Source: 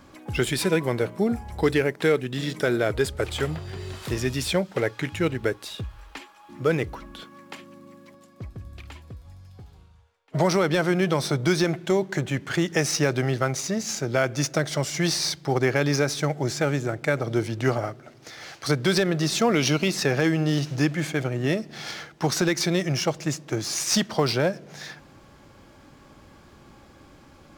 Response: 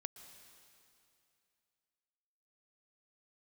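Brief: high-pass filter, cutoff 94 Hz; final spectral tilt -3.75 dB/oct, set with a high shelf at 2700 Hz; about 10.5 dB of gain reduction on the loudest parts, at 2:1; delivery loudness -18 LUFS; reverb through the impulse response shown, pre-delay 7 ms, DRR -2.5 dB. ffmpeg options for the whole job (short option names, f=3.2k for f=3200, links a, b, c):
-filter_complex "[0:a]highpass=94,highshelf=f=2.7k:g=6.5,acompressor=threshold=-36dB:ratio=2,asplit=2[a][b];[1:a]atrim=start_sample=2205,adelay=7[c];[b][c]afir=irnorm=-1:irlink=0,volume=6dB[d];[a][d]amix=inputs=2:normalize=0,volume=10.5dB"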